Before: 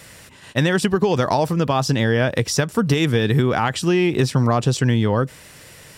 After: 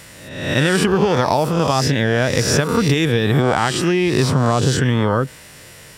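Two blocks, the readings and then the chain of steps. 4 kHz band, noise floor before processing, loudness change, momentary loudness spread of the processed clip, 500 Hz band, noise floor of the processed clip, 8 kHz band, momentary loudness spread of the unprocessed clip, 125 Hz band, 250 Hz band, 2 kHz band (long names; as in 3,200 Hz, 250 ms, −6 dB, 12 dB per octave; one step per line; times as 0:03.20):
+4.0 dB, −44 dBFS, +2.5 dB, 3 LU, +2.5 dB, −41 dBFS, +4.5 dB, 3 LU, +1.5 dB, +1.5 dB, +3.5 dB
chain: peak hold with a rise ahead of every peak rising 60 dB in 0.88 s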